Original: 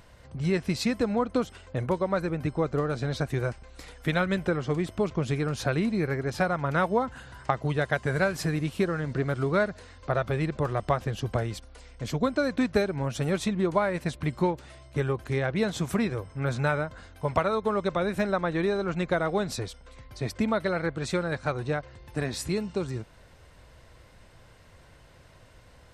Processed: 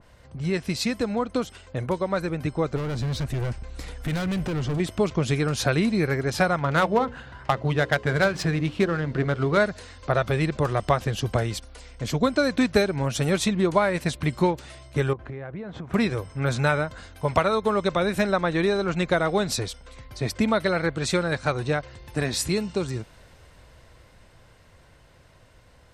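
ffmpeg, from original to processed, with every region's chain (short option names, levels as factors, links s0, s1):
-filter_complex "[0:a]asettb=1/sr,asplit=3[s0][s1][s2];[s0]atrim=end=2.764[s3];[s1]atrim=start=2.76:end=4.8,asetpts=PTS-STARTPTS,afade=t=in:d=0.004:c=qsin,afade=t=out:st=2.036:d=0.004:c=qsin,acompressor=threshold=0.0251:ratio=1.5:attack=3.2:release=140:knee=1:detection=peak,volume=44.7,asoftclip=hard,volume=0.0224,lowshelf=f=270:g=9[s4];[s2]atrim=start=4.796[s5];[s3][s4]acrossfade=d=0.004:c1=hsin:c2=qsin[s6];[s6][s5]acrossfade=d=0.004:c1=qsin:c2=hsin,asettb=1/sr,asplit=3[s7][s8][s9];[s7]atrim=end=6.594[s10];[s8]atrim=start=6.59:end=9.58,asetpts=PTS-STARTPTS,afade=t=in:d=0.004:c=qsin,afade=t=out:st=2.986:d=0.004:c=qsin,bandreject=f=60:t=h:w=6,bandreject=f=120:t=h:w=6,bandreject=f=180:t=h:w=6,bandreject=f=240:t=h:w=6,bandreject=f=300:t=h:w=6,bandreject=f=360:t=h:w=6,bandreject=f=420:t=h:w=6,bandreject=f=480:t=h:w=6,bandreject=f=540:t=h:w=6,adynamicsmooth=sensitivity=5:basefreq=3100,volume=5.96,asoftclip=hard,volume=0.168[s11];[s9]atrim=start=9.576[s12];[s10][s11]acrossfade=d=0.004:c1=hsin:c2=qsin[s13];[s13][s12]acrossfade=d=0.004:c1=qsin:c2=hsin,asettb=1/sr,asplit=3[s14][s15][s16];[s14]atrim=end=15.134[s17];[s15]atrim=start=15.13:end=15.94,asetpts=PTS-STARTPTS,afade=t=in:d=0.004:c=qsin,afade=t=out:st=0.806:d=0.004:c=qsin,lowpass=1600,acompressor=threshold=0.0178:ratio=10:attack=3.2:release=140:knee=1:detection=peak[s18];[s16]atrim=start=15.936[s19];[s17][s18]acrossfade=d=0.004:c1=hsin:c2=qsin[s20];[s20][s19]acrossfade=d=0.004:c1=qsin:c2=hsin,dynaudnorm=f=330:g=17:m=1.58,adynamicequalizer=threshold=0.0126:dfrequency=2200:dqfactor=0.7:tfrequency=2200:tqfactor=0.7:attack=5:release=100:ratio=0.375:range=2.5:mode=boostabove:tftype=highshelf"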